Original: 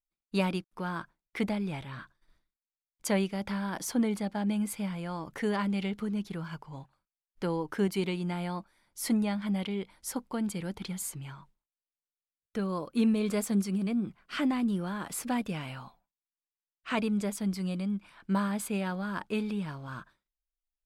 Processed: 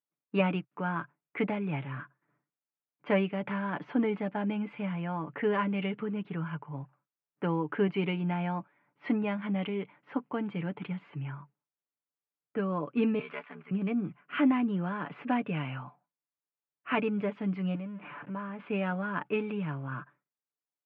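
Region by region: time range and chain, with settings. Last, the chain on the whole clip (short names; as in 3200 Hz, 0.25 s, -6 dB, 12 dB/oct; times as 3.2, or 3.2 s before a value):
13.19–13.71 ring modulator 35 Hz + band-pass 1500 Hz, Q 0.77 + tilt +3 dB/oct
17.75–18.6 zero-crossing step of -40 dBFS + high shelf 4500 Hz -7 dB + compressor 2:1, threshold -43 dBFS
whole clip: low-pass opened by the level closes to 1400 Hz, open at -27 dBFS; Chebyshev band-pass 130–2800 Hz, order 4; comb 6.9 ms, depth 46%; gain +2 dB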